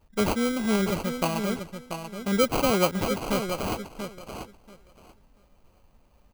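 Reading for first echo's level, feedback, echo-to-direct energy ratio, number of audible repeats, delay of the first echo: -8.0 dB, 17%, -8.0 dB, 2, 686 ms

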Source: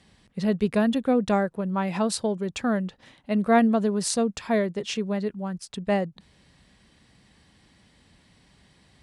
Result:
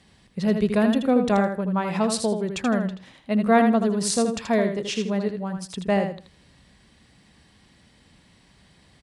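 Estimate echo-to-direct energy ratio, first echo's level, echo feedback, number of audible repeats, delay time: -6.5 dB, -6.5 dB, 22%, 3, 80 ms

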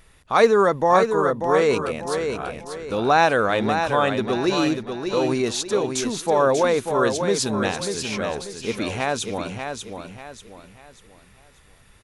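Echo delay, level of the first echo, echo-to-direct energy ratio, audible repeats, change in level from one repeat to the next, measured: 590 ms, -6.5 dB, -6.0 dB, 4, -9.0 dB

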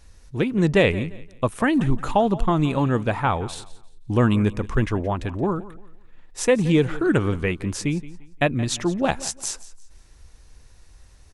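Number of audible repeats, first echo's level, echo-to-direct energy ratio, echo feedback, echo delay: 2, -18.0 dB, -17.5 dB, 29%, 173 ms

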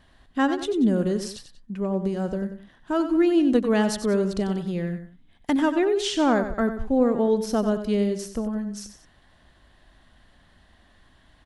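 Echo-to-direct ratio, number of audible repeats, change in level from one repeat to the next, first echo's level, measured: -9.5 dB, 2, -7.5 dB, -10.0 dB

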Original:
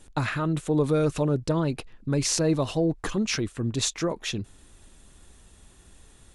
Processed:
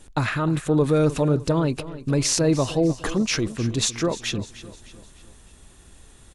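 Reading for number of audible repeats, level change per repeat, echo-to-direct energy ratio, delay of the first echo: 3, -7.0 dB, -14.5 dB, 303 ms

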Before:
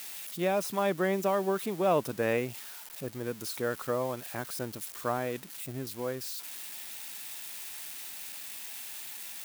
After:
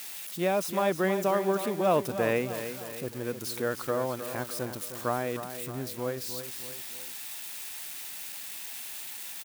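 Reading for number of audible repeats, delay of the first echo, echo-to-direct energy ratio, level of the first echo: 3, 309 ms, -9.0 dB, -10.0 dB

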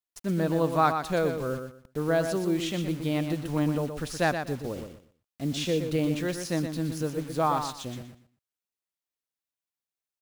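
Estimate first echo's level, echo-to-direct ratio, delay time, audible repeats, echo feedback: -7.5 dB, -7.5 dB, 121 ms, 3, 22%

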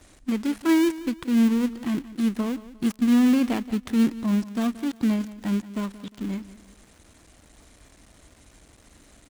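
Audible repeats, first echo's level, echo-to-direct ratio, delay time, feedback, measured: 3, -16.5 dB, -16.0 dB, 177 ms, 36%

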